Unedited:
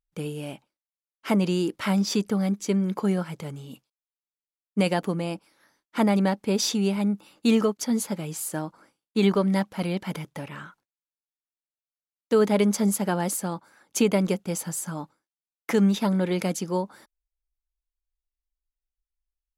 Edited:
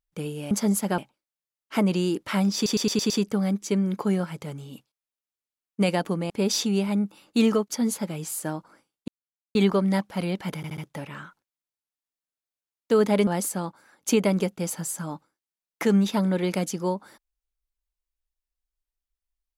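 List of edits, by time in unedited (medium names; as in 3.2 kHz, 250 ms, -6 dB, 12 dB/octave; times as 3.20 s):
2.08 s: stutter 0.11 s, 6 plays
5.28–6.39 s: delete
9.17 s: insert silence 0.47 s
10.19 s: stutter 0.07 s, 4 plays
12.68–13.15 s: move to 0.51 s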